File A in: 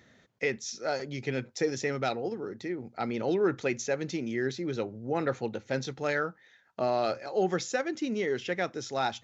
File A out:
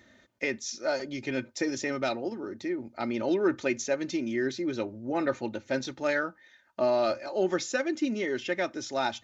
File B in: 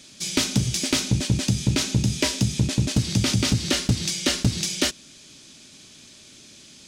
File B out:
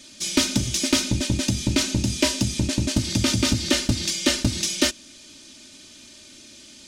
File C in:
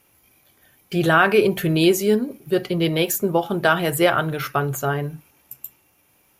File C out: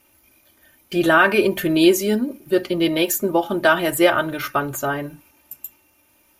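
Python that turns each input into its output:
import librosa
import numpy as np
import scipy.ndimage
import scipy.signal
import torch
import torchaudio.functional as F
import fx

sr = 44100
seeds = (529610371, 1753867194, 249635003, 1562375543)

y = x + 0.63 * np.pad(x, (int(3.3 * sr / 1000.0), 0))[:len(x)]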